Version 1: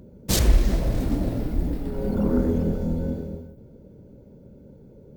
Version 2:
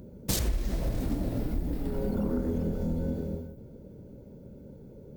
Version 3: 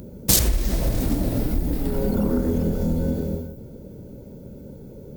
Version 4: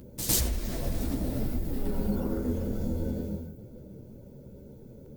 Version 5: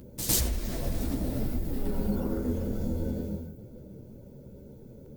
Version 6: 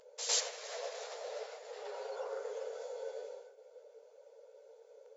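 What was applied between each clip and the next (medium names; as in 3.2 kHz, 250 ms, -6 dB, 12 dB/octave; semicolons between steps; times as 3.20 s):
treble shelf 7.7 kHz +5 dB; compression 5:1, threshold -26 dBFS, peak gain reduction 13.5 dB
treble shelf 4.8 kHz +8.5 dB; trim +7.5 dB
chorus voices 6, 1.1 Hz, delay 12 ms, depth 3.9 ms; reverse echo 105 ms -9.5 dB; trim -5 dB
no audible change
brick-wall FIR band-pass 420–7500 Hz; trim -1 dB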